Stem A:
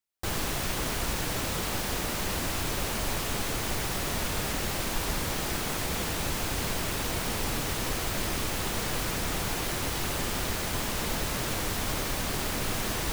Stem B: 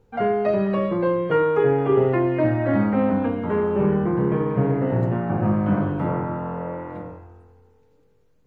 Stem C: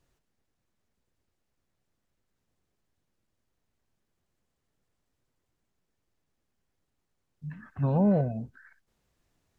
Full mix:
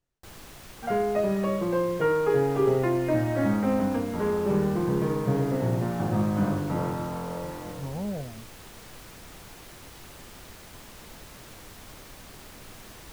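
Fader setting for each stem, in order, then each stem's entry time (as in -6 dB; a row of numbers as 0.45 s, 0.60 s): -15.5 dB, -4.5 dB, -9.5 dB; 0.00 s, 0.70 s, 0.00 s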